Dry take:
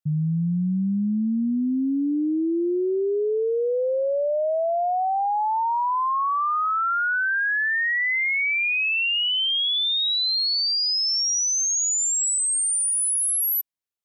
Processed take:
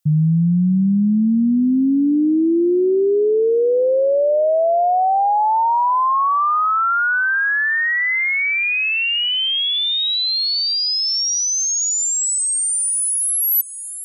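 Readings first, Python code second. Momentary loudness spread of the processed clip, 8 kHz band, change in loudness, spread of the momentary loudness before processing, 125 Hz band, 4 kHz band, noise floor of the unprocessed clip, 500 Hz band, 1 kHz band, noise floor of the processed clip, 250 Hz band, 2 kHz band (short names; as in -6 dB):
0 LU, +3.5 dB, +5.0 dB, 4 LU, n/a, +3.5 dB, -23 dBFS, +7.5 dB, +6.5 dB, -20 dBFS, +7.5 dB, +4.5 dB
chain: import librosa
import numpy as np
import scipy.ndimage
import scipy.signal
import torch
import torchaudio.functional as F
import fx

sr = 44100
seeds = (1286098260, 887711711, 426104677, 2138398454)

p1 = fx.high_shelf(x, sr, hz=3400.0, db=9.5)
p2 = p1 + fx.echo_feedback(p1, sr, ms=631, feedback_pct=43, wet_db=-22.5, dry=0)
y = fx.rider(p2, sr, range_db=10, speed_s=0.5)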